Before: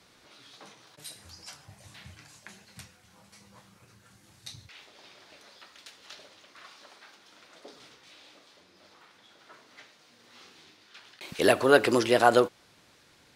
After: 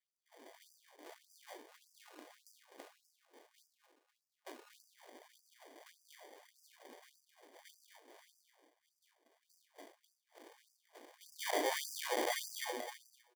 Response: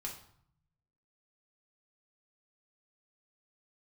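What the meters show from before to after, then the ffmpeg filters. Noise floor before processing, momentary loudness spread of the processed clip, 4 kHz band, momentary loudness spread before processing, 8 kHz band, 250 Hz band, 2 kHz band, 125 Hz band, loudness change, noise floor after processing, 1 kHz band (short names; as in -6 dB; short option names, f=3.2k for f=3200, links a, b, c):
-61 dBFS, 23 LU, -9.0 dB, 9 LU, -4.5 dB, -19.5 dB, -13.5 dB, under -40 dB, -17.0 dB, under -85 dBFS, -14.0 dB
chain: -filter_complex "[0:a]aeval=exprs='if(lt(val(0),0),0.708*val(0),val(0))':c=same,aresample=16000,acrusher=bits=3:mode=log:mix=0:aa=0.000001,aresample=44100,agate=range=-21dB:threshold=-56dB:ratio=16:detection=peak,acontrast=68,aecho=1:1:255|510|765:0.355|0.0923|0.024[a];[1:a]atrim=start_sample=2205,asetrate=57330,aresample=44100[b];[a][b]afir=irnorm=-1:irlink=0,acrusher=samples=33:mix=1:aa=0.000001,volume=25dB,asoftclip=hard,volume=-25dB,afftfilt=real='re*gte(b*sr/1024,250*pow(4800/250,0.5+0.5*sin(2*PI*1.7*pts/sr)))':imag='im*gte(b*sr/1024,250*pow(4800/250,0.5+0.5*sin(2*PI*1.7*pts/sr)))':win_size=1024:overlap=0.75,volume=-4dB"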